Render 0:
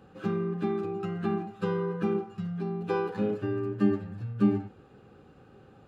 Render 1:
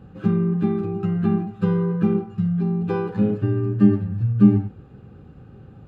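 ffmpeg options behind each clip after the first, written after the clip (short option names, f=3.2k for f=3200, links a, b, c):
-af "bass=f=250:g=14,treble=f=4k:g=-5,volume=1.5dB"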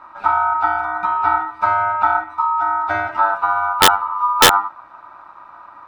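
-af "bandreject=f=1.6k:w=8.9,aeval=exprs='val(0)*sin(2*PI*1100*n/s)':c=same,aeval=exprs='(mod(2.37*val(0)+1,2)-1)/2.37':c=same,volume=6dB"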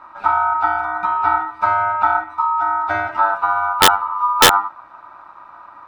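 -af anull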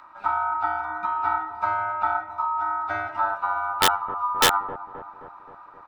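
-filter_complex "[0:a]acrossover=split=1200[a][b];[a]aecho=1:1:263|526|789|1052|1315|1578|1841:0.282|0.169|0.101|0.0609|0.0365|0.0219|0.0131[c];[b]acompressor=mode=upward:threshold=-42dB:ratio=2.5[d];[c][d]amix=inputs=2:normalize=0,volume=-8dB"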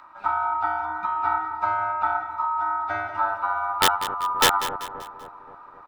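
-af "aecho=1:1:193|386|579|772:0.237|0.0972|0.0399|0.0163"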